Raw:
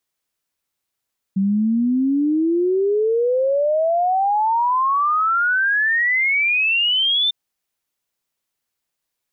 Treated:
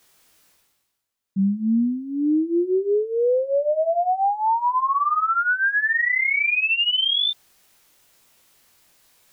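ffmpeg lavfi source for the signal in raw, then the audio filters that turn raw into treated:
-f lavfi -i "aevalsrc='0.178*clip(min(t,5.95-t)/0.01,0,1)*sin(2*PI*190*5.95/log(3600/190)*(exp(log(3600/190)*t/5.95)-1))':duration=5.95:sample_rate=44100"
-af "areverse,acompressor=mode=upward:threshold=-35dB:ratio=2.5,areverse,flanger=delay=19.5:depth=2.3:speed=0.85"

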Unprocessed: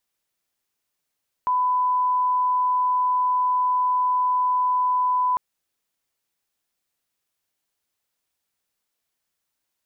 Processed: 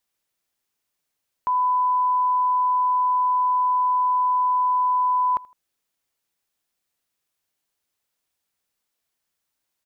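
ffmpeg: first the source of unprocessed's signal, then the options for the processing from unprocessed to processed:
-f lavfi -i "sine=frequency=1000:duration=3.9:sample_rate=44100,volume=0.06dB"
-af "aecho=1:1:80|160:0.0708|0.0255"

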